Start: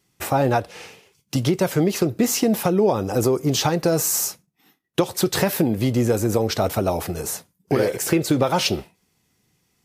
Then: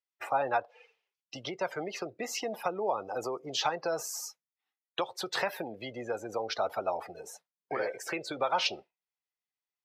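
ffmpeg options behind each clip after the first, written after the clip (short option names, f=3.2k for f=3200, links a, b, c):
-filter_complex "[0:a]highpass=110,afftdn=nr=22:nf=-32,acrossover=split=580 5000:gain=0.0794 1 0.141[a][b][c];[a][b][c]amix=inputs=3:normalize=0,volume=-4.5dB"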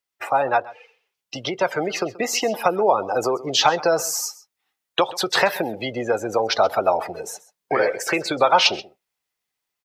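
-af "aecho=1:1:131:0.106,dynaudnorm=f=970:g=3:m=4dB,volume=9dB"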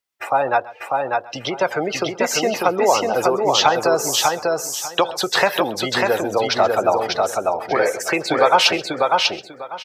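-af "aecho=1:1:595|1190|1785:0.708|0.142|0.0283,volume=1.5dB"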